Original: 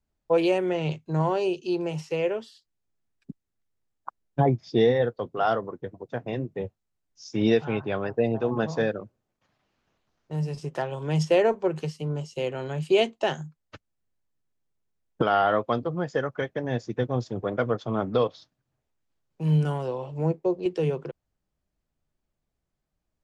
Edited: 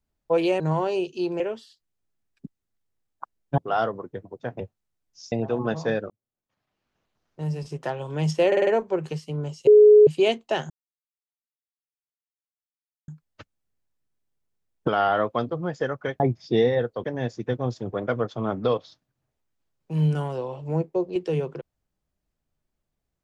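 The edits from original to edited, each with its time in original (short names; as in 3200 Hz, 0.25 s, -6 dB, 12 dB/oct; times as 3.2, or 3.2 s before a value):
0.6–1.09 cut
1.89–2.25 cut
4.43–5.27 move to 16.54
6.29–6.62 cut
7.34–8.24 cut
9.02–10.34 fade in
11.39 stutter 0.05 s, 5 plays
12.39–12.79 bleep 421 Hz -8.5 dBFS
13.42 insert silence 2.38 s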